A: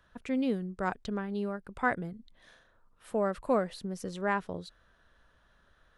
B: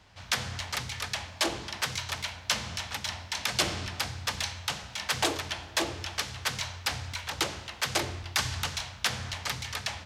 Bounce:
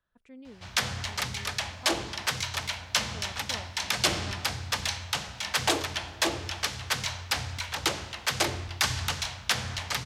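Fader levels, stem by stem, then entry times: −18.0, +2.0 decibels; 0.00, 0.45 seconds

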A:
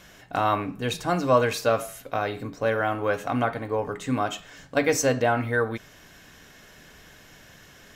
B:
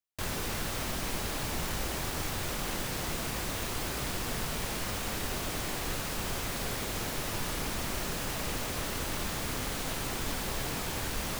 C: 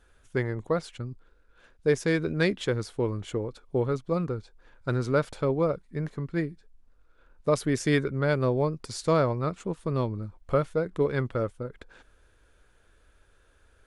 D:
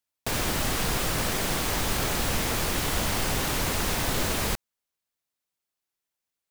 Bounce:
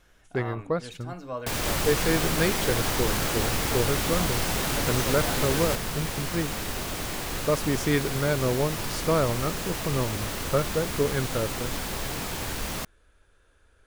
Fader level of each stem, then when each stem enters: −15.0, +2.5, −0.5, −1.5 decibels; 0.00, 1.45, 0.00, 1.20 seconds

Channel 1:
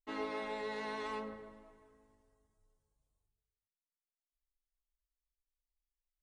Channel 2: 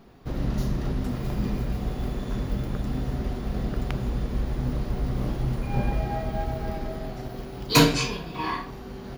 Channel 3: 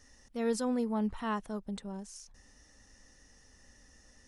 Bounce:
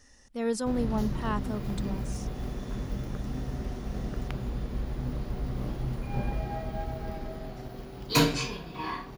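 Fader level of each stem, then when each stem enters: muted, −5.5 dB, +2.0 dB; muted, 0.40 s, 0.00 s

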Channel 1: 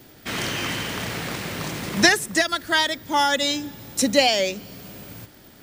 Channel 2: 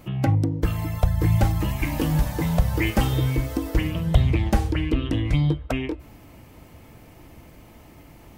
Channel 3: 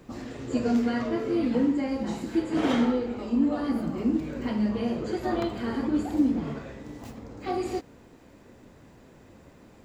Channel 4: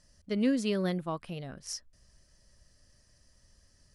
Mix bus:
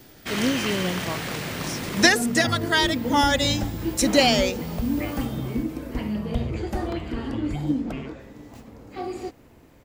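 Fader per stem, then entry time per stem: −1.0, −10.0, −2.5, +2.5 decibels; 0.00, 2.20, 1.50, 0.00 seconds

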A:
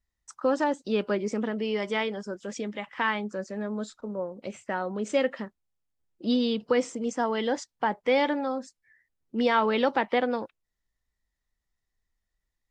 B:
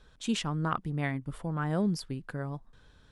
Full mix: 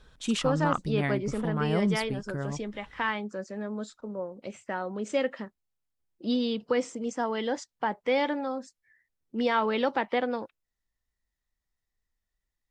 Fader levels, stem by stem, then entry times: −2.5, +2.0 decibels; 0.00, 0.00 seconds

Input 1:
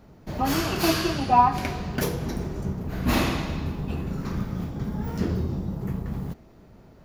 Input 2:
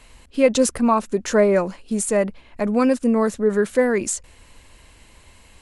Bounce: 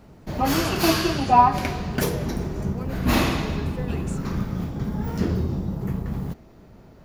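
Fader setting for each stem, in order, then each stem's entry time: +2.5, −19.5 decibels; 0.00, 0.00 seconds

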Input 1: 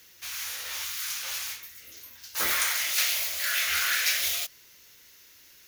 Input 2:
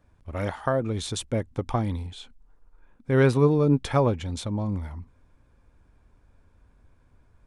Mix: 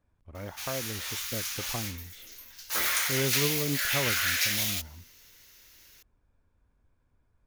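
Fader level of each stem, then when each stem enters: −1.5, −11.0 decibels; 0.35, 0.00 seconds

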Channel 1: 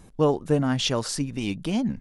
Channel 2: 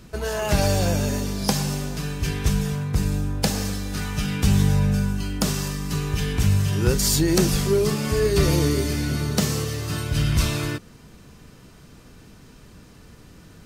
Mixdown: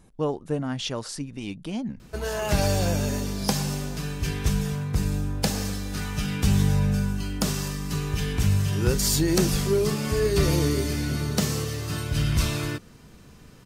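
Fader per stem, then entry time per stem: −5.5, −2.5 decibels; 0.00, 2.00 seconds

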